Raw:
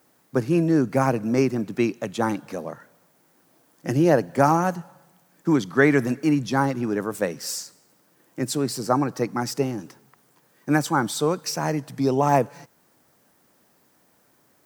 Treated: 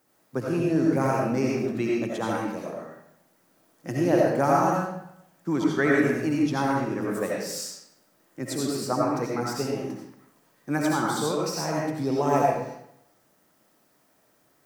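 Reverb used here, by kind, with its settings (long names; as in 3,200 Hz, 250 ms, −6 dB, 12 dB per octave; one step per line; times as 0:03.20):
comb and all-pass reverb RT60 0.76 s, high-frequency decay 0.8×, pre-delay 45 ms, DRR −3.5 dB
level −7 dB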